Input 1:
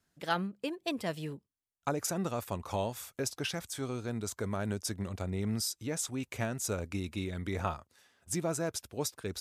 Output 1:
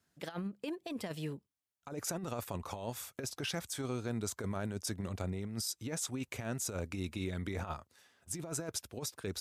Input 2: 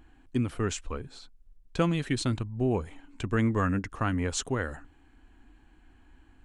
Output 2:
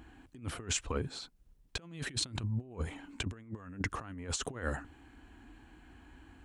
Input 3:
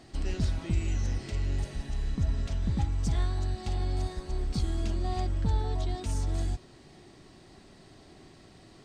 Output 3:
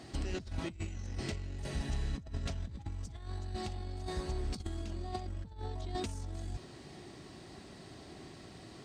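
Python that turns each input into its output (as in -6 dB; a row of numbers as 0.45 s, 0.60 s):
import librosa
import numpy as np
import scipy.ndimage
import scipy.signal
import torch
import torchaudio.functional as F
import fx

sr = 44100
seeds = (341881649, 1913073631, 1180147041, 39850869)

y = scipy.signal.sosfilt(scipy.signal.butter(2, 53.0, 'highpass', fs=sr, output='sos'), x)
y = fx.over_compress(y, sr, threshold_db=-35.0, ratio=-0.5)
y = F.gain(torch.from_numpy(y), -2.0).numpy()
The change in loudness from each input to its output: -3.5 LU, -8.5 LU, -9.5 LU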